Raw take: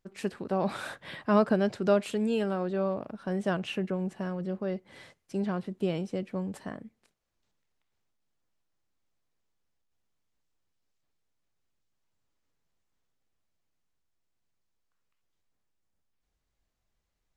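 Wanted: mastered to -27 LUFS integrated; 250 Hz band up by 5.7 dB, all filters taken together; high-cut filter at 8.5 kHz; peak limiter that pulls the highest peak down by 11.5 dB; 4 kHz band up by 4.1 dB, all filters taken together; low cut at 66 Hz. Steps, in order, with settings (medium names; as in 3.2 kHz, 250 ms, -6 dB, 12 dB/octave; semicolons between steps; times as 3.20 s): high-pass 66 Hz; low-pass 8.5 kHz; peaking EQ 250 Hz +8 dB; peaking EQ 4 kHz +6 dB; trim +3 dB; peak limiter -15.5 dBFS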